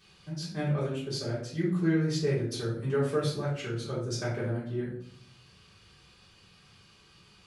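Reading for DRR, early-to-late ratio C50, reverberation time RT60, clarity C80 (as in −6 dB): −8.5 dB, 3.5 dB, 0.60 s, 8.5 dB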